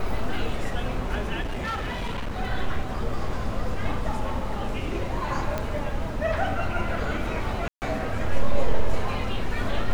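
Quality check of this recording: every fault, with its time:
0:01.41–0:02.41: clipping −25.5 dBFS
0:05.58: click −14 dBFS
0:07.68–0:07.82: drop-out 139 ms

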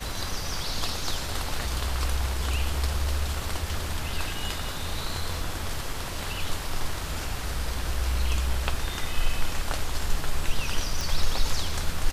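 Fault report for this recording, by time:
0:11.01: click

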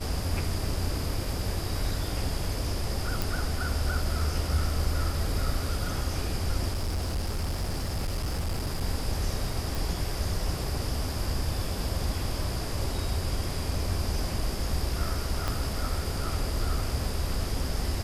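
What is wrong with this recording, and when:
0:03.22: click
0:06.72–0:08.82: clipping −25.5 dBFS
0:09.75: click
0:15.48: click −14 dBFS

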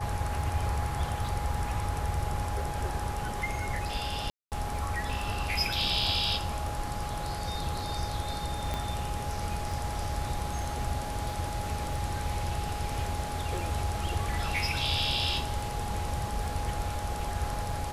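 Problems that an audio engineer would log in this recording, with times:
surface crackle 10 per second −38 dBFS
whistle 830 Hz −37 dBFS
0:04.30–0:04.52: drop-out 218 ms
0:08.74: click −18 dBFS

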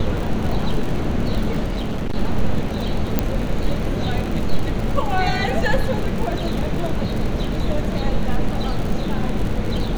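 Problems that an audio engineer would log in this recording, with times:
surface crackle 67 per second −25 dBFS
0:01.66–0:02.17: clipping −19 dBFS
0:03.19: click −3 dBFS

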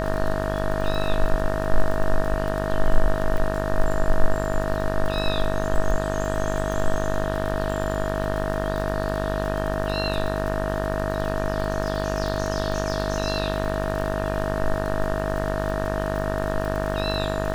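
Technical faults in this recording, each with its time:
mains buzz 50 Hz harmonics 37 −27 dBFS
surface crackle 40 per second −28 dBFS
whistle 640 Hz −28 dBFS
0:03.38: drop-out 2 ms

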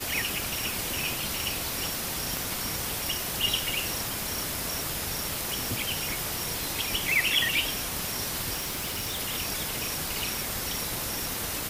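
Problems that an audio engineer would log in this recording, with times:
0:02.37: click
0:08.55–0:09.20: clipping −28 dBFS

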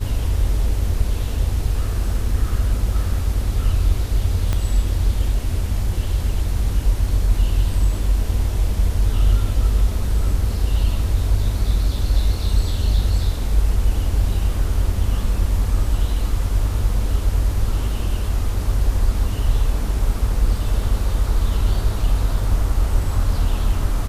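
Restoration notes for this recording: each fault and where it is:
0:04.53: click −10 dBFS

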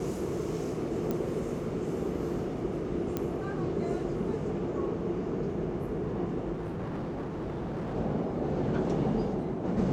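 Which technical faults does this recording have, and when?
0:01.11: click −19 dBFS
0:03.17: click −17 dBFS
0:06.52–0:07.95: clipping −32 dBFS

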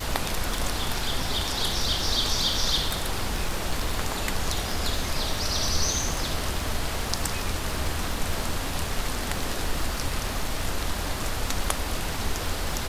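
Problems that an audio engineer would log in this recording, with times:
surface crackle 150 per second −34 dBFS
0:02.84–0:03.92: clipping −19.5 dBFS

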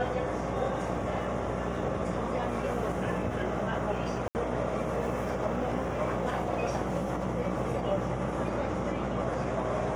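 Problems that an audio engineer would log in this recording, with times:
mains buzz 60 Hz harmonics 14 −36 dBFS
0:04.28–0:04.35: drop-out 69 ms

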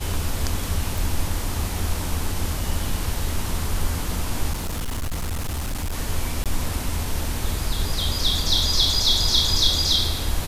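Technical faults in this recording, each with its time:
0:00.98: click
0:04.52–0:05.95: clipping −23 dBFS
0:06.44–0:06.46: drop-out 17 ms

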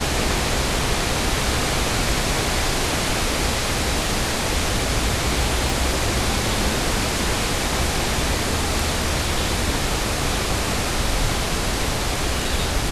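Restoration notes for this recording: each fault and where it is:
0:05.70: click

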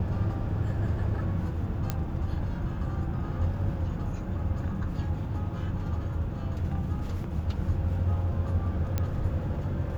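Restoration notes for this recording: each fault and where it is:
0:01.90: click −14 dBFS
0:08.98: click −15 dBFS

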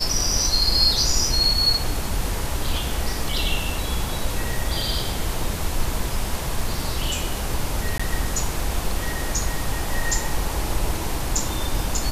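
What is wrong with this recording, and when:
0:07.98–0:08.00: drop-out 15 ms

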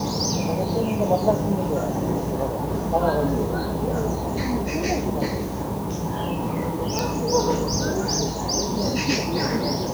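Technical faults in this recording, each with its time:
0:06.99: click

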